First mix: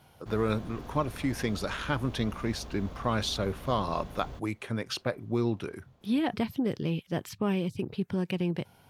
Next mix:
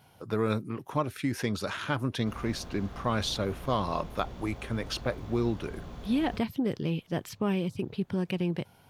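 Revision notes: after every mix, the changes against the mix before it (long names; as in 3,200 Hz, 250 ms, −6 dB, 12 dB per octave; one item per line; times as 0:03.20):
background: entry +2.00 s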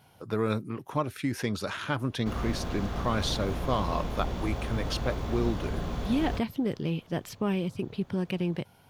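background +10.0 dB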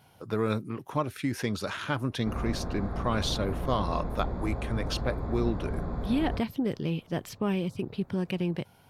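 background: add moving average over 15 samples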